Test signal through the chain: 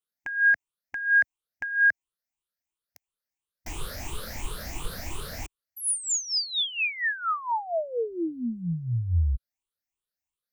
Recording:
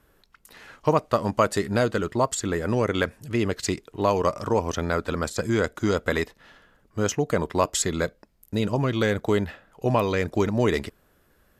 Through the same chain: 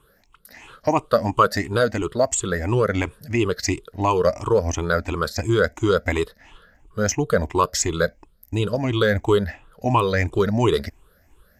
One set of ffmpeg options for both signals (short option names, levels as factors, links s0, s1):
-af "afftfilt=real='re*pow(10,16/40*sin(2*PI*(0.66*log(max(b,1)*sr/1024/100)/log(2)-(2.9)*(pts-256)/sr)))':imag='im*pow(10,16/40*sin(2*PI*(0.66*log(max(b,1)*sr/1024/100)/log(2)-(2.9)*(pts-256)/sr)))':win_size=1024:overlap=0.75,asubboost=boost=2.5:cutoff=99"